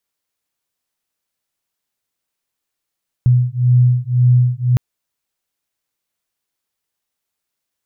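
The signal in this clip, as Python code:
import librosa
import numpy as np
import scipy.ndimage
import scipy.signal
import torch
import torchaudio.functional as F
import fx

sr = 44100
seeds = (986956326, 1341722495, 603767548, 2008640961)

y = fx.two_tone_beats(sr, length_s=1.51, hz=123.0, beat_hz=1.9, level_db=-13.0)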